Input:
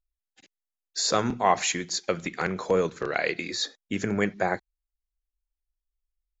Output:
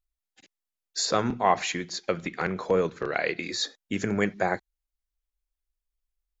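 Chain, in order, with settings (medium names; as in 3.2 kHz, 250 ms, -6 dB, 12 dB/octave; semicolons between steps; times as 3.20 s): 1.05–3.43 s: distance through air 100 m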